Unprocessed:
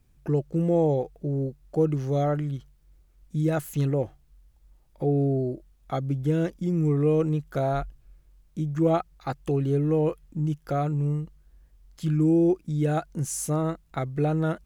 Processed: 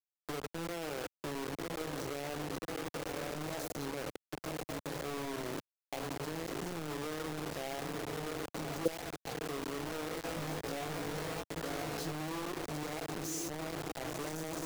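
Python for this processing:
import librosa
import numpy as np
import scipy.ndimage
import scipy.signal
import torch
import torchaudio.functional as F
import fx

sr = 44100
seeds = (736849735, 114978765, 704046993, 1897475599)

y = scipy.signal.sosfilt(scipy.signal.butter(2, 250.0, 'highpass', fs=sr, output='sos'), x)
y = fx.high_shelf(y, sr, hz=6500.0, db=-9.0)
y = fx.echo_diffused(y, sr, ms=1101, feedback_pct=68, wet_db=-10.5)
y = fx.rev_fdn(y, sr, rt60_s=0.69, lf_ratio=1.25, hf_ratio=0.45, size_ms=20.0, drr_db=11.5)
y = fx.level_steps(y, sr, step_db=19)
y = fx.brickwall_bandstop(y, sr, low_hz=890.0, high_hz=3800.0)
y = fx.band_shelf(y, sr, hz=4200.0, db=10.5, octaves=1.7)
y = fx.quant_dither(y, sr, seeds[0], bits=6, dither='none')
y = fx.doubler(y, sr, ms=18.0, db=-3.0, at=(10.11, 12.12))
y = fx.band_squash(y, sr, depth_pct=40)
y = F.gain(torch.from_numpy(y), -3.0).numpy()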